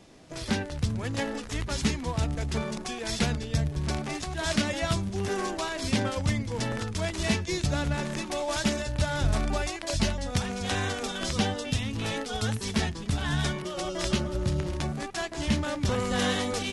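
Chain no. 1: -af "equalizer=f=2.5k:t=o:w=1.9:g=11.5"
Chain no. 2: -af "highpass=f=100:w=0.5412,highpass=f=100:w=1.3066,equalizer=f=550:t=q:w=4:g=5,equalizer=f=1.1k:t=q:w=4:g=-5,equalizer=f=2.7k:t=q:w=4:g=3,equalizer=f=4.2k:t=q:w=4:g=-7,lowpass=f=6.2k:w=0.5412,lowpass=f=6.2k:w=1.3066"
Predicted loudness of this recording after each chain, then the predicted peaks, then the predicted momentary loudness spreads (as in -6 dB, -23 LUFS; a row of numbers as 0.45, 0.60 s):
-25.0, -30.0 LUFS; -3.5, -11.0 dBFS; 6, 5 LU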